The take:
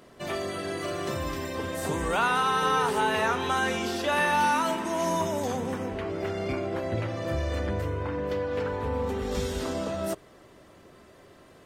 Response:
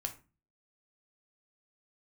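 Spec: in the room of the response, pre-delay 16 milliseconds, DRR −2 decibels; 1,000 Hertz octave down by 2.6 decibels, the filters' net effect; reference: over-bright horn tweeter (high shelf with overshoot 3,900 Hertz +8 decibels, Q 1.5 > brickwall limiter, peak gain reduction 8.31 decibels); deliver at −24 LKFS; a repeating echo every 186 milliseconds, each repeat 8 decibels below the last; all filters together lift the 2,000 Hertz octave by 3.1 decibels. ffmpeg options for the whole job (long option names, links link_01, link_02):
-filter_complex "[0:a]equalizer=frequency=1000:width_type=o:gain=-5,equalizer=frequency=2000:width_type=o:gain=8,aecho=1:1:186|372|558|744|930:0.398|0.159|0.0637|0.0255|0.0102,asplit=2[link_01][link_02];[1:a]atrim=start_sample=2205,adelay=16[link_03];[link_02][link_03]afir=irnorm=-1:irlink=0,volume=2dB[link_04];[link_01][link_04]amix=inputs=2:normalize=0,highshelf=frequency=3900:width_type=q:width=1.5:gain=8,volume=1dB,alimiter=limit=-15dB:level=0:latency=1"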